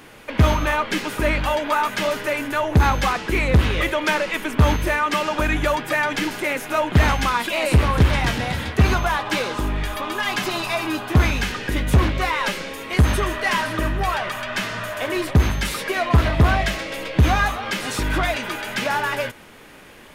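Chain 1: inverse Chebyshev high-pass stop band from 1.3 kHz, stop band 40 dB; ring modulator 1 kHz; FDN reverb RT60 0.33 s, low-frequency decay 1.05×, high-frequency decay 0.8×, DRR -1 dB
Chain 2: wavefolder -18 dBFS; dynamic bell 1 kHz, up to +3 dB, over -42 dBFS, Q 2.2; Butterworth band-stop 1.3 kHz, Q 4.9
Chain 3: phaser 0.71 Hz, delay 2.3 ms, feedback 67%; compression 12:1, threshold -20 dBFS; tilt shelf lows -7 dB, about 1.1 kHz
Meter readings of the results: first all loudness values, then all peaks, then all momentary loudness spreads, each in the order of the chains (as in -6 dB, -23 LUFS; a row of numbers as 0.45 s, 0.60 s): -31.0 LUFS, -24.0 LUFS, -23.5 LUFS; -14.0 dBFS, -12.5 dBFS, -7.5 dBFS; 6 LU, 3 LU, 6 LU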